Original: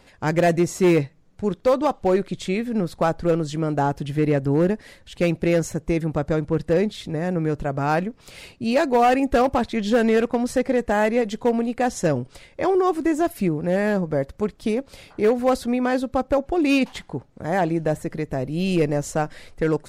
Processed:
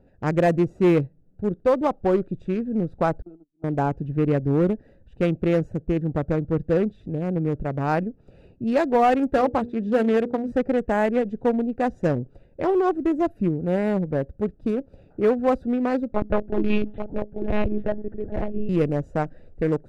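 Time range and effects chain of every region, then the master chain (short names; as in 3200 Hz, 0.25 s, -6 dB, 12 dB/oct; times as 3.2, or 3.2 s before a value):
3.22–3.64 gate -20 dBFS, range -39 dB + compressor 8:1, threshold -32 dBFS + fixed phaser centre 510 Hz, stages 6
9.3–10.52 HPF 100 Hz 6 dB/oct + notches 60/120/180/240/300/360/420/480 Hz
16.12–18.69 notches 50/100/150/200/250/300 Hz + echo 0.84 s -5.5 dB + monotone LPC vocoder at 8 kHz 210 Hz
whole clip: Wiener smoothing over 41 samples; high shelf 3200 Hz -8.5 dB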